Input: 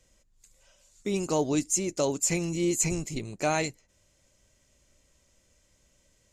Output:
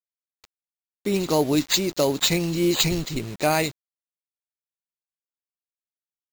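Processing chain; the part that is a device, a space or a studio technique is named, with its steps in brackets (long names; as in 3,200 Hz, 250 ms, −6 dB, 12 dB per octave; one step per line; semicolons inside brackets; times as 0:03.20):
early 8-bit sampler (sample-rate reduction 11,000 Hz, jitter 0%; bit reduction 8 bits)
level +5.5 dB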